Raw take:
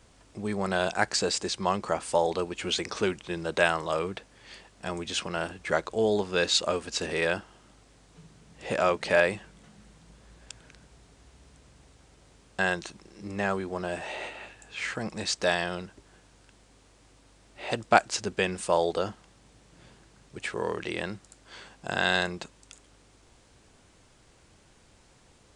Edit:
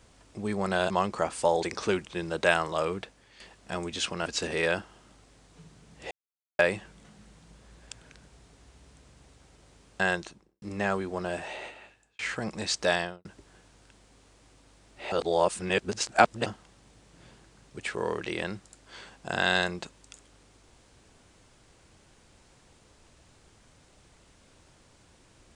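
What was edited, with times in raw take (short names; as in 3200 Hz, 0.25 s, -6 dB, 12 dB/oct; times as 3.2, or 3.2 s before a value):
0.9–1.6 cut
2.33–2.77 cut
4.12–4.54 fade out linear, to -9.5 dB
5.4–6.85 cut
8.7–9.18 mute
12.71–13.21 studio fade out
13.91–14.78 fade out
15.55–15.84 studio fade out
17.71–19.05 reverse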